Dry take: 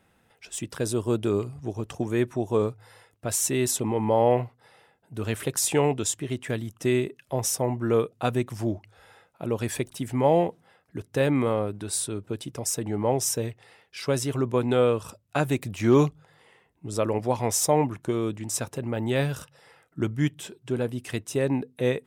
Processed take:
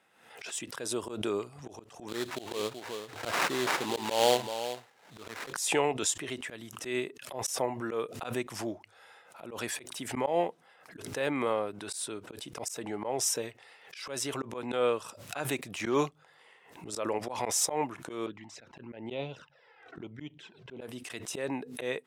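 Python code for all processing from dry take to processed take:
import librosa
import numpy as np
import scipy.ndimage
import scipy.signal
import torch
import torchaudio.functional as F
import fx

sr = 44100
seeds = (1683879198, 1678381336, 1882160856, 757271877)

y = fx.chain(x, sr, fx.echo_single(ms=379, db=-11.5),
    fx.sample_hold(seeds[0], rate_hz=3800.0, jitter_pct=20),
    fx.running_max(window=3), at=(2.08, 5.53))
y = fx.chain(y, sr, fx.notch(hz=1200.0, q=8.3),
    fx.env_flanger(rest_ms=2.9, full_db=-23.0),
    fx.air_absorb(metres=210.0), at=(18.26, 20.81))
y = fx.weighting(y, sr, curve='A')
y = fx.auto_swell(y, sr, attack_ms=136.0)
y = fx.pre_swell(y, sr, db_per_s=76.0)
y = y * 10.0 ** (-1.5 / 20.0)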